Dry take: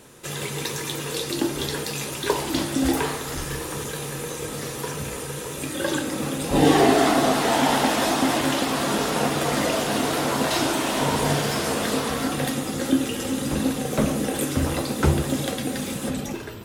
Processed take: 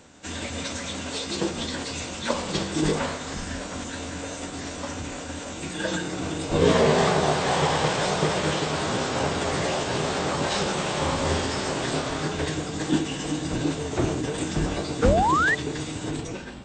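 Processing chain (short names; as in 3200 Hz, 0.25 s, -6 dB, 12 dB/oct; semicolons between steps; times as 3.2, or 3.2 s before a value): formant-preserving pitch shift -9.5 st; brick-wall FIR low-pass 8700 Hz; painted sound rise, 15.02–15.55, 450–2000 Hz -20 dBFS; gain -1 dB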